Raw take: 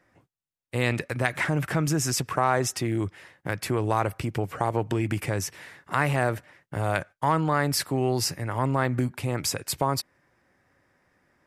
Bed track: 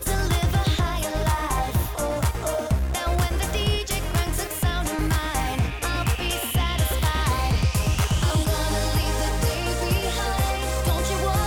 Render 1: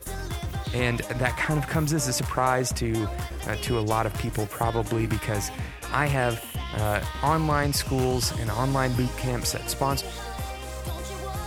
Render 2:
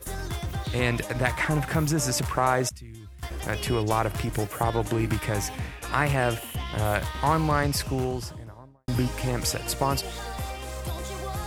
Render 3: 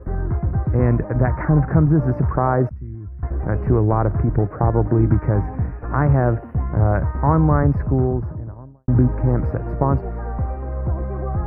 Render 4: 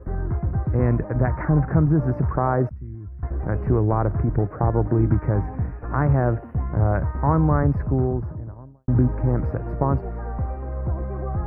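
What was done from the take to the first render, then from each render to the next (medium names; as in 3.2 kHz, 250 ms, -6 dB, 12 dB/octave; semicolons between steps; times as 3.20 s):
add bed track -10 dB
2.69–3.23 s: amplifier tone stack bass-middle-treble 6-0-2; 7.53–8.88 s: studio fade out
inverse Chebyshev low-pass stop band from 3.1 kHz, stop band 40 dB; bass shelf 490 Hz +12 dB
trim -3 dB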